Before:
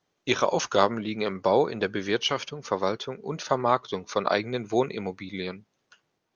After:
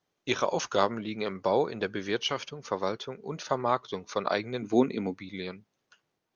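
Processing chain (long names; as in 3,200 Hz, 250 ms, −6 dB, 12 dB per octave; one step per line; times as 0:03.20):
0:04.62–0:05.14: parametric band 260 Hz +14.5 dB 0.57 octaves
level −4 dB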